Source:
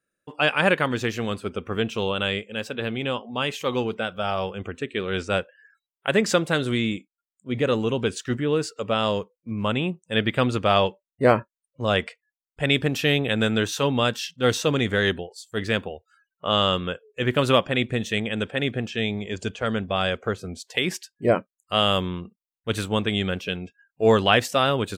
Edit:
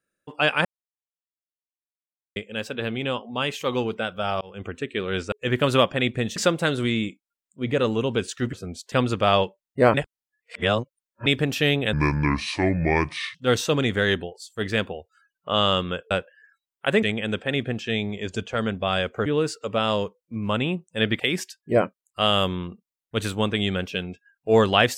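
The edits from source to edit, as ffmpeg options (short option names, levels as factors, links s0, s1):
-filter_complex "[0:a]asplit=16[s0][s1][s2][s3][s4][s5][s6][s7][s8][s9][s10][s11][s12][s13][s14][s15];[s0]atrim=end=0.65,asetpts=PTS-STARTPTS,afade=t=out:st=0.646:d=0.004:c=hsin[s16];[s1]atrim=start=0.65:end=2.36,asetpts=PTS-STARTPTS,volume=0[s17];[s2]atrim=start=2.36:end=4.41,asetpts=PTS-STARTPTS,afade=t=in:d=0.004:c=hsin,afade=t=out:st=2.046:d=0.004:c=hsin[s18];[s3]atrim=start=4.41:end=5.322,asetpts=PTS-STARTPTS,afade=t=in:d=0.25[s19];[s4]atrim=start=17.068:end=18.112[s20];[s5]atrim=start=6.238:end=8.412[s21];[s6]atrim=start=20.338:end=20.732[s22];[s7]atrim=start=10.348:end=11.372[s23];[s8]atrim=start=11.368:end=12.692,asetpts=PTS-STARTPTS,areverse[s24];[s9]atrim=start=12.688:end=13.364[s25];[s10]atrim=start=13.36:end=14.31,asetpts=PTS-STARTPTS,asetrate=29547,aresample=44100[s26];[s11]atrim=start=14.306:end=17.072[s27];[s12]atrim=start=5.318:end=6.242[s28];[s13]atrim=start=18.108:end=20.342[s29];[s14]atrim=start=8.408:end=10.352[s30];[s15]atrim=start=20.728[s31];[s16][s17][s18][s19]concat=n=4:v=0:a=1[s32];[s32][s20]acrossfade=d=0.004:c1=hsin:c2=hsin[s33];[s33][s21]acrossfade=d=0.004:c1=hsin:c2=hsin[s34];[s34][s22]acrossfade=d=0.004:c1=hsin:c2=hsin[s35];[s35][s23]acrossfade=d=0.004:c1=hsin:c2=hsin[s36];[s36][s24]acrossfade=d=0.004:c1=hsin:c2=hsin[s37];[s37][s25]acrossfade=d=0.004:c1=hsin:c2=hsin[s38];[s38][s26]acrossfade=d=0.004:c1=hsin:c2=hsin[s39];[s39][s27]acrossfade=d=0.004:c1=hsin:c2=hsin[s40];[s40][s28]acrossfade=d=0.004:c1=hsin:c2=hsin[s41];[s41][s29]acrossfade=d=0.004:c1=hsin:c2=hsin[s42];[s42][s30]acrossfade=d=0.004:c1=hsin:c2=hsin[s43];[s43][s31]acrossfade=d=0.004:c1=hsin:c2=hsin"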